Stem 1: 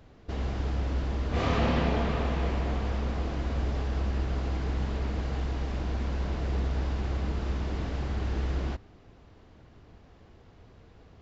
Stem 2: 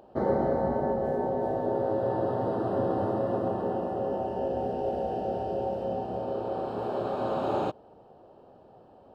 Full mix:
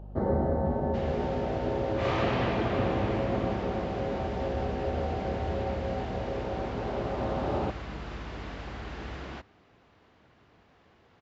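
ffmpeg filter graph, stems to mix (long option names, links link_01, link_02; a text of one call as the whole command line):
ffmpeg -i stem1.wav -i stem2.wav -filter_complex "[0:a]highpass=frequency=950:poles=1,adelay=650,volume=2dB[link_01];[1:a]equalizer=frequency=79:width=7.3:gain=14.5,aeval=exprs='val(0)+0.00562*(sin(2*PI*50*n/s)+sin(2*PI*2*50*n/s)/2+sin(2*PI*3*50*n/s)/3+sin(2*PI*4*50*n/s)/4+sin(2*PI*5*50*n/s)/5)':channel_layout=same,volume=-3.5dB[link_02];[link_01][link_02]amix=inputs=2:normalize=0,bass=frequency=250:gain=7,treble=frequency=4000:gain=-8" out.wav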